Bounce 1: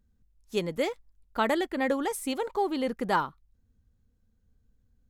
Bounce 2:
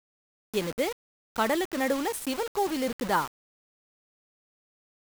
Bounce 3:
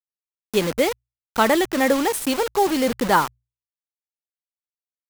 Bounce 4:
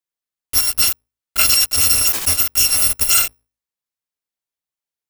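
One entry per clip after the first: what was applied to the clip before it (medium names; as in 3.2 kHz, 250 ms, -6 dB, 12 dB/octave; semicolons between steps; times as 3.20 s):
word length cut 6-bit, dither none
hum notches 60/120 Hz; trim +8.5 dB
bit-reversed sample order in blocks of 256 samples; in parallel at -2.5 dB: compressor with a negative ratio -19 dBFS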